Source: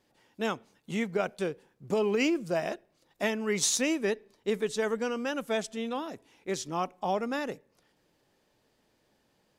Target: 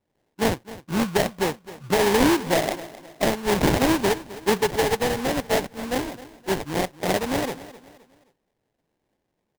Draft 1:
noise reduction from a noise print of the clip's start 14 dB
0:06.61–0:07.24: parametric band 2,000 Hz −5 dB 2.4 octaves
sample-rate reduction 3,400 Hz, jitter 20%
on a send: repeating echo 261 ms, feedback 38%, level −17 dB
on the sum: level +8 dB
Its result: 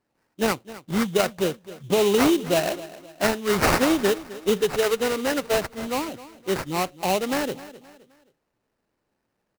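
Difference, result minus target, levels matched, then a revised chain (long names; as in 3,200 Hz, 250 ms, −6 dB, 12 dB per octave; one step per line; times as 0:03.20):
sample-rate reduction: distortion −9 dB
noise reduction from a noise print of the clip's start 14 dB
0:06.61–0:07.24: parametric band 2,000 Hz −5 dB 2.4 octaves
sample-rate reduction 1,300 Hz, jitter 20%
on a send: repeating echo 261 ms, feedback 38%, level −17 dB
on the sum: level +8 dB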